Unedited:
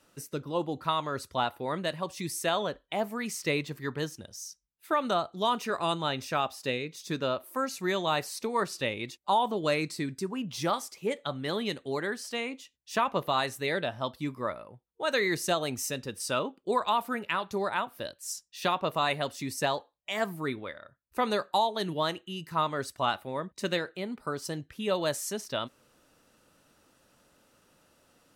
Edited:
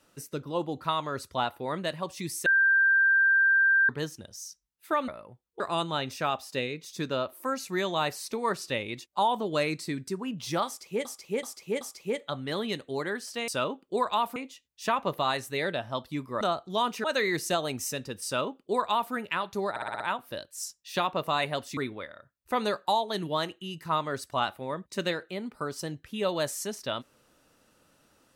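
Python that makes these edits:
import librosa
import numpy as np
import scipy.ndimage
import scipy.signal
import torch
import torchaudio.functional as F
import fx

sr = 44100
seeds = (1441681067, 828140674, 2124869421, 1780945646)

y = fx.edit(x, sr, fx.bleep(start_s=2.46, length_s=1.43, hz=1580.0, db=-18.5),
    fx.swap(start_s=5.08, length_s=0.63, other_s=14.5, other_length_s=0.52),
    fx.repeat(start_s=10.78, length_s=0.38, count=4),
    fx.duplicate(start_s=16.23, length_s=0.88, to_s=12.45),
    fx.stutter(start_s=17.68, slice_s=0.06, count=6),
    fx.cut(start_s=19.45, length_s=0.98), tone=tone)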